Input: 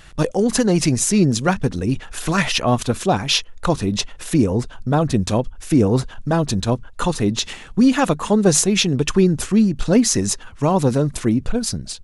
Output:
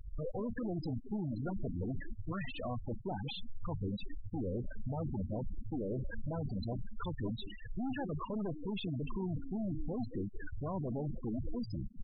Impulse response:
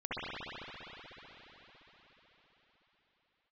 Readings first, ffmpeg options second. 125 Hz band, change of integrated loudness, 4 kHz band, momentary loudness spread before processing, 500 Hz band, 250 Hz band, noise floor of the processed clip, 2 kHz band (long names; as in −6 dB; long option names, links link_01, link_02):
−18.0 dB, −21.0 dB, −26.5 dB, 8 LU, −21.5 dB, −21.0 dB, −47 dBFS, −23.5 dB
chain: -filter_complex "[0:a]aeval=exprs='(tanh(25.1*val(0)+0.45)-tanh(0.45))/25.1':channel_layout=same,alimiter=level_in=12dB:limit=-24dB:level=0:latency=1:release=29,volume=-12dB,aresample=11025,aresample=44100,asplit=2[link_01][link_02];[link_02]asplit=4[link_03][link_04][link_05][link_06];[link_03]adelay=187,afreqshift=91,volume=-10dB[link_07];[link_04]adelay=374,afreqshift=182,volume=-19.4dB[link_08];[link_05]adelay=561,afreqshift=273,volume=-28.7dB[link_09];[link_06]adelay=748,afreqshift=364,volume=-38.1dB[link_10];[link_07][link_08][link_09][link_10]amix=inputs=4:normalize=0[link_11];[link_01][link_11]amix=inputs=2:normalize=0,afftfilt=real='re*gte(hypot(re,im),0.0251)':imag='im*gte(hypot(re,im),0.0251)':win_size=1024:overlap=0.75,volume=4dB"